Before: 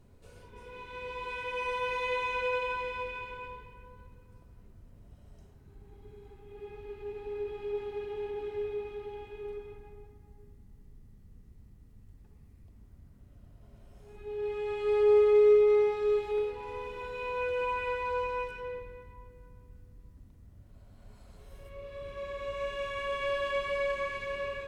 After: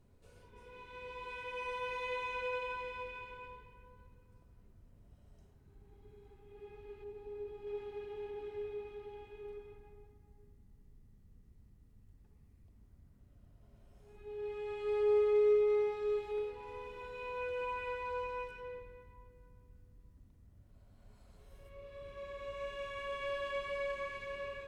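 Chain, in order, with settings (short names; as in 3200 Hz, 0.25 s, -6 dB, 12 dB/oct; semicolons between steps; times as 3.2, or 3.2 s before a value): 7.04–7.67 bell 2400 Hz -6.5 dB 2.7 oct; gain -7 dB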